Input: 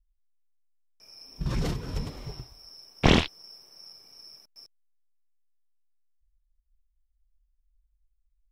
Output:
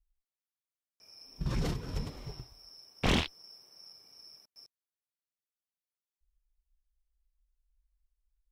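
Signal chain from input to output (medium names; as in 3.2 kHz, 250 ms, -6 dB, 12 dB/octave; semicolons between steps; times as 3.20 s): saturation -23 dBFS, distortion -5 dB; Chebyshev shaper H 3 -17 dB, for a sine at -23 dBFS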